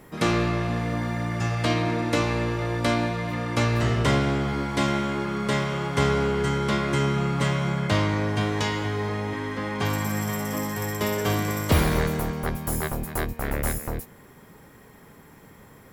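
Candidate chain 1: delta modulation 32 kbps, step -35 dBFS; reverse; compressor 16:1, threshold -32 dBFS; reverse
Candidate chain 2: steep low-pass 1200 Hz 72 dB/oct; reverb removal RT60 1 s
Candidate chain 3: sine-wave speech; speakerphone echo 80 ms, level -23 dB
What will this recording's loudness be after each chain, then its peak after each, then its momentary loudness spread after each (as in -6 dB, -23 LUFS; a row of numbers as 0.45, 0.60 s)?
-37.0, -29.5, -24.5 LUFS; -24.0, -10.0, -8.5 dBFS; 4, 7, 9 LU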